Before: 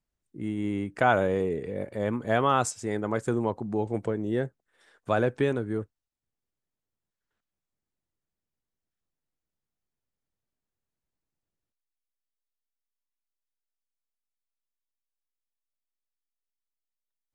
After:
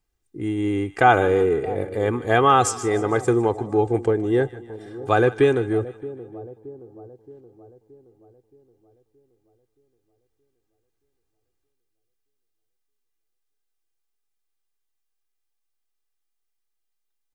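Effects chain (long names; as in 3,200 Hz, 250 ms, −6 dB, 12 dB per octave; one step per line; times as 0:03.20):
comb filter 2.5 ms, depth 63%
echo with a time of its own for lows and highs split 800 Hz, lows 623 ms, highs 153 ms, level −16 dB
level +6 dB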